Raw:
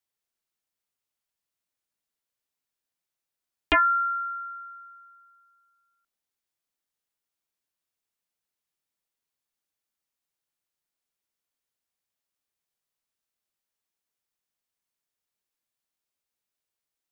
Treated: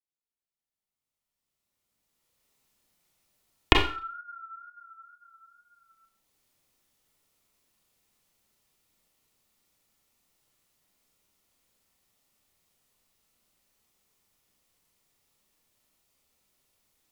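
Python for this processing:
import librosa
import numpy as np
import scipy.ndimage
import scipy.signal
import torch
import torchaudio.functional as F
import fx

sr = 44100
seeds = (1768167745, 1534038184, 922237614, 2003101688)

y = fx.recorder_agc(x, sr, target_db=-18.5, rise_db_per_s=12.0, max_gain_db=30)
y = fx.low_shelf(y, sr, hz=450.0, db=4.0)
y = fx.wow_flutter(y, sr, seeds[0], rate_hz=2.1, depth_cents=62.0)
y = fx.low_shelf(y, sr, hz=190.0, db=4.5)
y = fx.notch(y, sr, hz=1600.0, q=10.0)
y = fx.rev_schroeder(y, sr, rt60_s=0.4, comb_ms=29, drr_db=2.5)
y = y * librosa.db_to_amplitude(-17.5)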